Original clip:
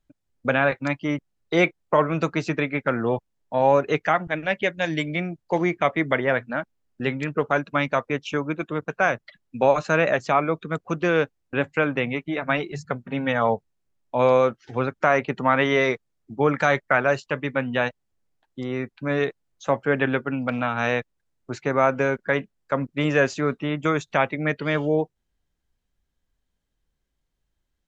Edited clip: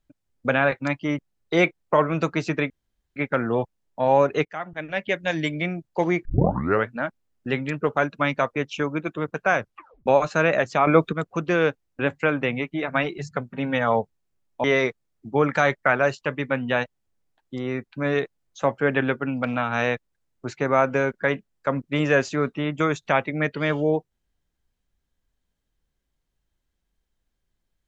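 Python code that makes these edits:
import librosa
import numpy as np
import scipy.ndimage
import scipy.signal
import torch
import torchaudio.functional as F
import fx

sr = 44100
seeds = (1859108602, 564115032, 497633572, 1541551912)

y = fx.edit(x, sr, fx.insert_room_tone(at_s=2.7, length_s=0.46),
    fx.fade_in_from(start_s=3.99, length_s=0.79, floor_db=-18.5),
    fx.tape_start(start_s=5.79, length_s=0.64),
    fx.tape_stop(start_s=9.13, length_s=0.47),
    fx.clip_gain(start_s=10.41, length_s=0.26, db=8.0),
    fx.cut(start_s=14.18, length_s=1.51), tone=tone)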